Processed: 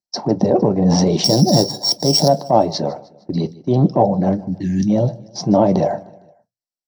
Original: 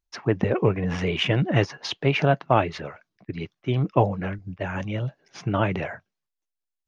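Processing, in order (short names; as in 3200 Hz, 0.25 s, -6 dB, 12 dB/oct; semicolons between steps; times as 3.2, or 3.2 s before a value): 1.24–2.28 sample sorter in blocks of 8 samples; EQ curve 140 Hz 0 dB, 700 Hz +12 dB, 1000 Hz +1 dB, 2400 Hz -8 dB, 4000 Hz +12 dB; gate -36 dBFS, range -18 dB; 4.49–4.9 brick-wall FIR band-stop 370–1600 Hz; compressor 2.5:1, threshold -21 dBFS, peak gain reduction 10.5 dB; feedback echo 0.153 s, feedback 52%, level -23 dB; transient shaper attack -8 dB, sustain 0 dB; reverb RT60 0.15 s, pre-delay 3 ms, DRR 8 dB; gain +2 dB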